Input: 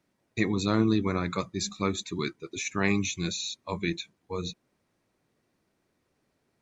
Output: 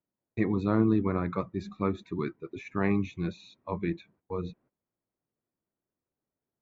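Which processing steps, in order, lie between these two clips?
noise gate −57 dBFS, range −16 dB
low-pass filter 1,400 Hz 12 dB per octave

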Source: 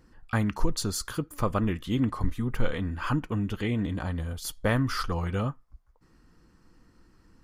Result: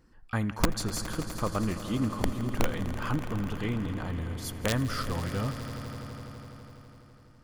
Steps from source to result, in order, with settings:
wrap-around overflow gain 13 dB
echo that builds up and dies away 83 ms, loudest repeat 5, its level −15.5 dB
level −3.5 dB

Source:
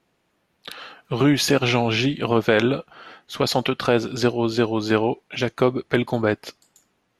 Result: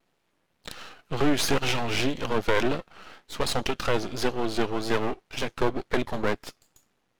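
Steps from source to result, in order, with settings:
half-wave rectification
pitch vibrato 1.9 Hz 67 cents

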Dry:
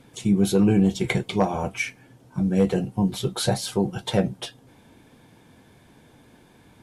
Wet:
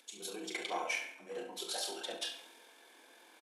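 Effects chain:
high-shelf EQ 2,400 Hz +11.5 dB
reversed playback
downward compressor 8 to 1, threshold −33 dBFS, peak gain reduction 18.5 dB
reversed playback
Bessel high-pass filter 510 Hz, order 8
repeating echo 68 ms, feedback 59%, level −4.5 dB
on a send at −5 dB: convolution reverb RT60 1.3 s, pre-delay 52 ms
on the sum: upward compression, threshold −54 dBFS
high-shelf EQ 6,000 Hz −6 dB
tempo change 2×
multiband upward and downward expander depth 40%
level −1 dB

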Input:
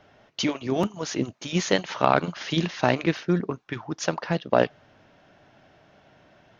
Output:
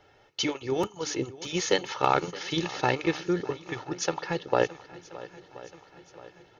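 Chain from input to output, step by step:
bass and treble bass −1 dB, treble +3 dB
comb filter 2.3 ms, depth 66%
feedback echo with a long and a short gap by turns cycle 1,029 ms, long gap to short 1.5 to 1, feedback 49%, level −18 dB
level −4 dB

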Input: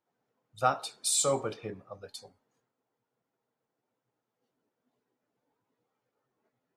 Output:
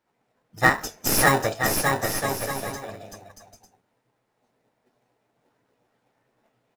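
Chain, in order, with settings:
stylus tracing distortion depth 0.029 ms
high-shelf EQ 7,400 Hz −6 dB
in parallel at −6 dB: sample-rate reduction 1,100 Hz, jitter 0%
on the sum: formants moved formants +6 semitones
bouncing-ball delay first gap 590 ms, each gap 0.65×, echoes 5
level +7.5 dB

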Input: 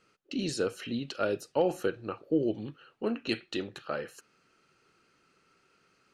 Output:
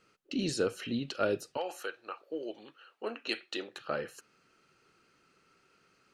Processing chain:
0:01.56–0:03.79: high-pass filter 960 Hz → 400 Hz 12 dB per octave

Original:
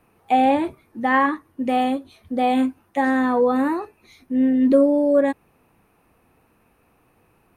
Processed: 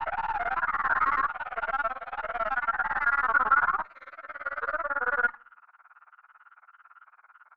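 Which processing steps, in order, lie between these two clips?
peak hold with a rise ahead of every peak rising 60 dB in 1.55 s
high-pass filter 980 Hz 24 dB per octave
granular cloud 52 ms, grains 18 per second, pitch spread up and down by 3 semitones
tube saturation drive 36 dB, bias 0.6
low-pass with resonance 1,400 Hz, resonance Q 9.3
on a send: convolution reverb RT60 0.50 s, pre-delay 3 ms, DRR 21 dB
on the sum: level +5.5 dB

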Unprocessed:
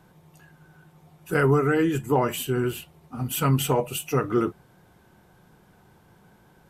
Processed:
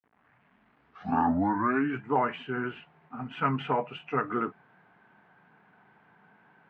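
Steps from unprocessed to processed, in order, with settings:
turntable start at the beginning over 2.10 s
bit-depth reduction 10 bits, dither none
loudspeaker in its box 260–2,300 Hz, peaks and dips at 350 Hz −10 dB, 530 Hz −9 dB, 1,600 Hz +3 dB

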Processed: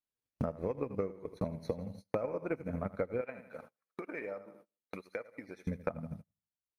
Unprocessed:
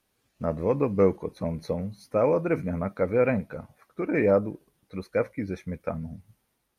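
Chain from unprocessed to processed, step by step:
repeating echo 80 ms, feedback 43%, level −9.5 dB
transient designer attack +9 dB, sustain −8 dB
noise gate −42 dBFS, range −34 dB
downward compressor 10 to 1, threshold −39 dBFS, peak gain reduction 27.5 dB
0:03.21–0:05.67: high-pass filter 850 Hz 6 dB per octave
level +6.5 dB

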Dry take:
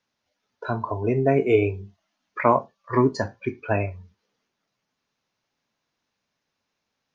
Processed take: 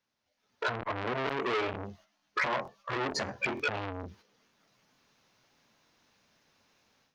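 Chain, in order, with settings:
automatic gain control gain up to 15.5 dB
dynamic equaliser 140 Hz, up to −5 dB, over −32 dBFS, Q 2.3
downward compressor 4 to 1, threshold −22 dBFS, peak gain reduction 12 dB
noise gate −55 dBFS, range −9 dB
0:01.52–0:03.70: double-tracking delay 14 ms −2.5 dB
brickwall limiter −22 dBFS, peak gain reduction 14.5 dB
regular buffer underruns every 0.46 s, samples 1,024, repeat, from 0:00.33
saturating transformer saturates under 1,600 Hz
level +4 dB

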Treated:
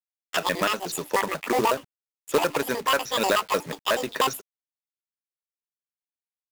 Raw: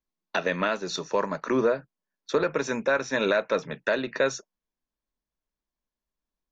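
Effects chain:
pitch shifter gated in a rhythm +11.5 semitones, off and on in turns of 61 ms
log-companded quantiser 4 bits
level +1.5 dB

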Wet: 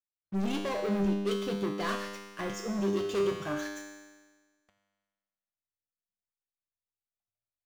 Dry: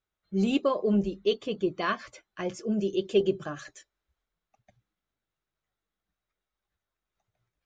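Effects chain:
leveller curve on the samples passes 5
tuned comb filter 100 Hz, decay 1.4 s, harmonics all, mix 90%

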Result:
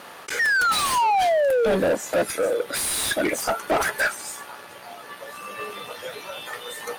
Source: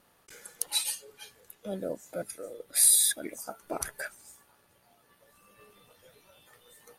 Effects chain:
sound drawn into the spectrogram fall, 0:00.39–0:01.76, 400–1,900 Hz −38 dBFS
mid-hump overdrive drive 36 dB, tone 2,700 Hz, clips at −10 dBFS
level −1.5 dB

